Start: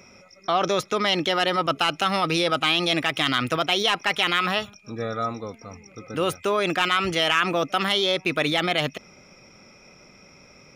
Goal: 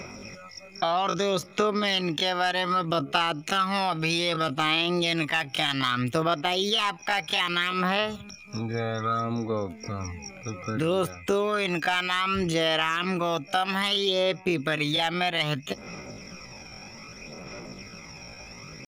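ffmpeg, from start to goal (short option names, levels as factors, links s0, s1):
-af "aphaser=in_gain=1:out_gain=1:delay=1.3:decay=0.48:speed=1.1:type=sinusoidal,atempo=0.57,acompressor=threshold=0.0178:ratio=2.5,volume=2.24"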